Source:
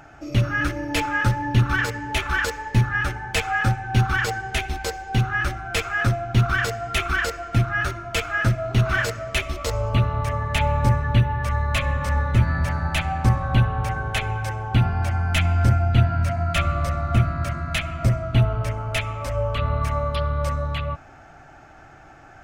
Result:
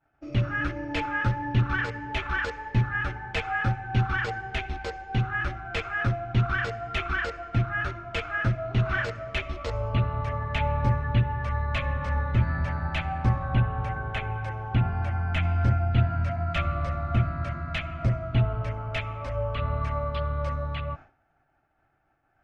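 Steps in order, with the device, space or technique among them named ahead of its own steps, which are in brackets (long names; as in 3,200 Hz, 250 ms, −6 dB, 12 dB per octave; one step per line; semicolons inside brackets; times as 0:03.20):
0:13.46–0:15.43: dynamic equaliser 4,900 Hz, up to −7 dB, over −44 dBFS, Q 1.2
hearing-loss simulation (low-pass filter 3,300 Hz 12 dB per octave; downward expander −34 dBFS)
level −5 dB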